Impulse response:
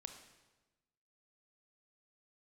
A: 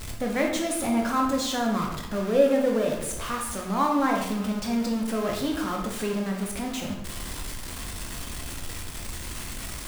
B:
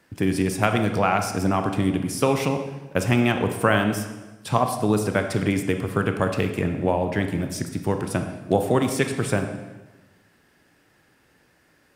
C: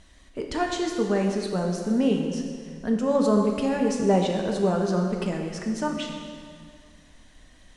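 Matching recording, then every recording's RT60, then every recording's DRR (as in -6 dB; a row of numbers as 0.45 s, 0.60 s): B; 0.90 s, 1.2 s, 2.1 s; 0.0 dB, 6.0 dB, 1.0 dB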